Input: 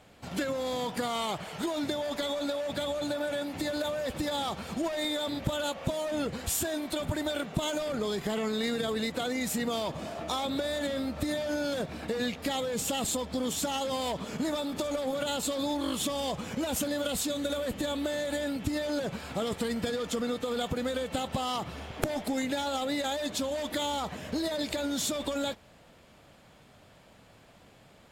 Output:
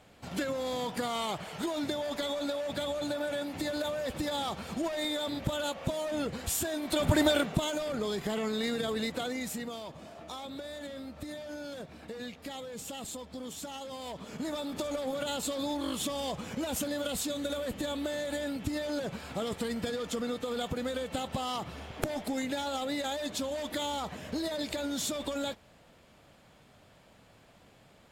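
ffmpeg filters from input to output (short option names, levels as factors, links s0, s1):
-af "volume=5.96,afade=t=in:st=6.81:d=0.4:silence=0.334965,afade=t=out:st=7.21:d=0.45:silence=0.334965,afade=t=out:st=9.1:d=0.68:silence=0.375837,afade=t=in:st=13.99:d=0.78:silence=0.421697"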